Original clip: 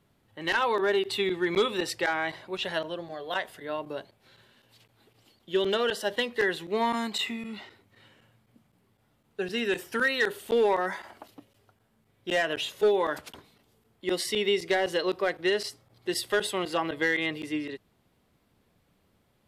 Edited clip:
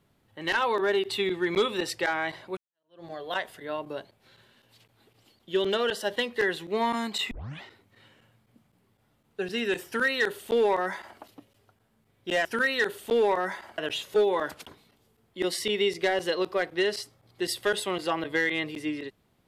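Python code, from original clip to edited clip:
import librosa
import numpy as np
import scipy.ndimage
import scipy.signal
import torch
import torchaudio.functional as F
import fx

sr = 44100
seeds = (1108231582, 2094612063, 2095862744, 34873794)

y = fx.edit(x, sr, fx.fade_in_span(start_s=2.57, length_s=0.48, curve='exp'),
    fx.tape_start(start_s=7.31, length_s=0.31),
    fx.duplicate(start_s=9.86, length_s=1.33, to_s=12.45), tone=tone)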